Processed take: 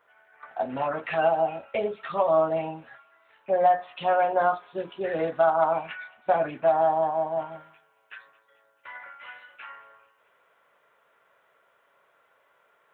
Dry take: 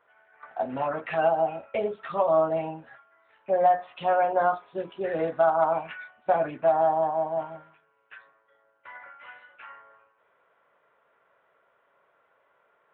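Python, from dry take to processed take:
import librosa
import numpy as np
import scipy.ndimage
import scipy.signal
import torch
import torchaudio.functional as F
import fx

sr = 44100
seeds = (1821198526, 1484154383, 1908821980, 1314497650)

y = fx.high_shelf(x, sr, hz=2900.0, db=fx.steps((0.0, 7.0), (7.51, 12.0)))
y = fx.echo_wet_highpass(y, sr, ms=219, feedback_pct=59, hz=2800.0, wet_db=-17.5)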